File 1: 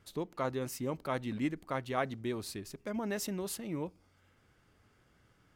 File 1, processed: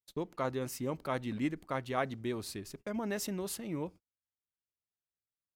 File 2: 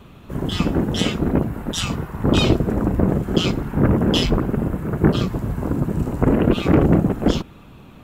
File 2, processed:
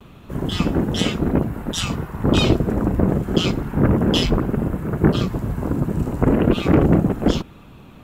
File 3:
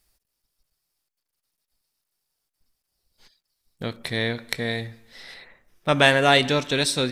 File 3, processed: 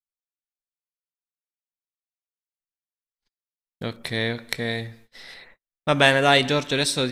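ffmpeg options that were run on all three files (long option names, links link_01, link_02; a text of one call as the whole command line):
ffmpeg -i in.wav -af "agate=range=-41dB:threshold=-49dB:ratio=16:detection=peak" out.wav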